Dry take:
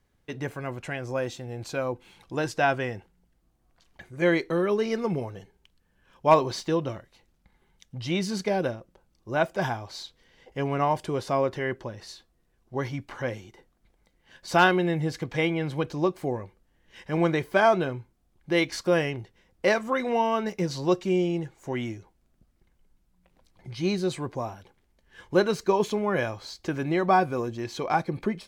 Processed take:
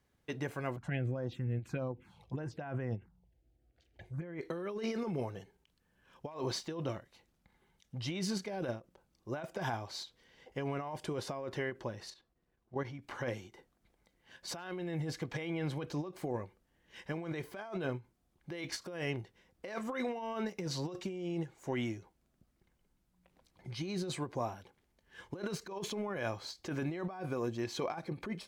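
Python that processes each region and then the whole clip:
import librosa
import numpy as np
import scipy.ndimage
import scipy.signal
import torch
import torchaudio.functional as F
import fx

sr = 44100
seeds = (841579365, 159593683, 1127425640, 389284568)

y = fx.chain(x, sr, fx.highpass(hz=47.0, slope=24),
    fx.bass_treble(bass_db=10, treble_db=-11),
    fx.env_phaser(low_hz=170.0, high_hz=4300.0, full_db=-20.0), at=(0.76, 4.41))
y = fx.chain(y, sr, fx.lowpass(hz=3100.0, slope=6),
    fx.level_steps(step_db=10), at=(12.1, 12.99))
y = fx.highpass(y, sr, hz=75.0, slope=6)
y = fx.over_compress(y, sr, threshold_db=-30.0, ratio=-1.0)
y = fx.end_taper(y, sr, db_per_s=300.0)
y = F.gain(torch.from_numpy(y), -7.5).numpy()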